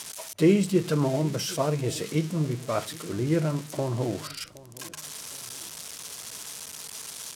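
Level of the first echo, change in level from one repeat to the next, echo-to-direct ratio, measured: −20.0 dB, −8.5 dB, −19.5 dB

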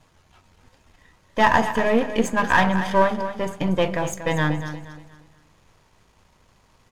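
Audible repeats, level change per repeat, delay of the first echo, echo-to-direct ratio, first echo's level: 3, −9.5 dB, 236 ms, −10.5 dB, −11.0 dB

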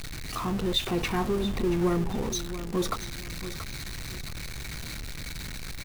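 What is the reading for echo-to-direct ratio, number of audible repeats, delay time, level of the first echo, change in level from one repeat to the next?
−12.0 dB, 2, 680 ms, −12.5 dB, −11.5 dB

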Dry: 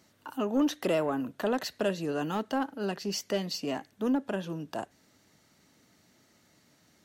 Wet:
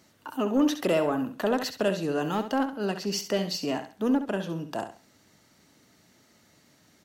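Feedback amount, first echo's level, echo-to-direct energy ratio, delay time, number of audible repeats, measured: 27%, −10.0 dB, −9.5 dB, 67 ms, 3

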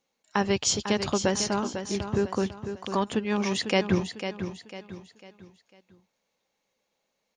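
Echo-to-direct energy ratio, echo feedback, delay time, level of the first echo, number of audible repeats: −8.5 dB, 38%, 499 ms, −9.0 dB, 4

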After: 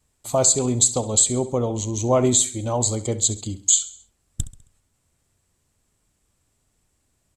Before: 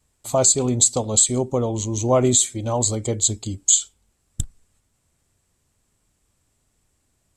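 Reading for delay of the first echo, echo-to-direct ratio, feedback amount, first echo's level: 67 ms, −15.0 dB, 46%, −16.0 dB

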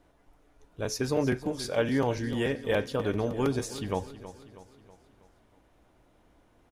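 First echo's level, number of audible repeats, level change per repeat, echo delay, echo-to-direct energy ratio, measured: −14.5 dB, 4, −6.0 dB, 321 ms, −13.5 dB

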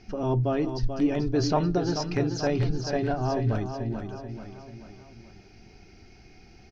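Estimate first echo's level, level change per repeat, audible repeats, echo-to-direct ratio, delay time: −8.0 dB, −6.0 dB, 4, −7.0 dB, 436 ms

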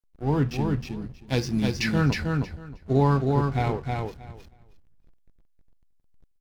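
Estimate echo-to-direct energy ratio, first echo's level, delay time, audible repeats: −3.5 dB, −3.5 dB, 315 ms, 2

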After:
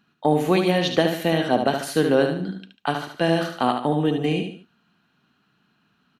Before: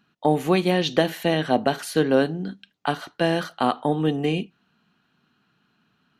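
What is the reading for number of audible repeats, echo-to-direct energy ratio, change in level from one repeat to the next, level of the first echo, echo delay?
3, −5.5 dB, −8.5 dB, −6.0 dB, 73 ms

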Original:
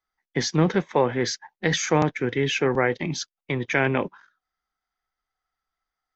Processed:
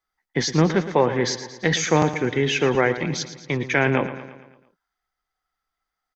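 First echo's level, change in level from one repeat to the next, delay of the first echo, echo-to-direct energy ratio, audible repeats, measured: −12.5 dB, −5.5 dB, 113 ms, −11.0 dB, 5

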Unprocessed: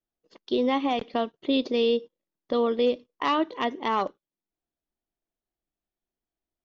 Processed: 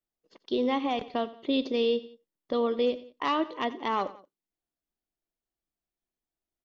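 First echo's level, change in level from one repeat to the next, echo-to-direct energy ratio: −17.0 dB, −7.0 dB, −16.0 dB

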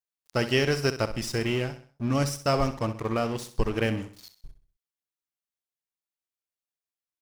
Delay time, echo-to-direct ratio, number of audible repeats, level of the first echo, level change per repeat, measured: 64 ms, −11.5 dB, 3, −12.0 dB, −8.0 dB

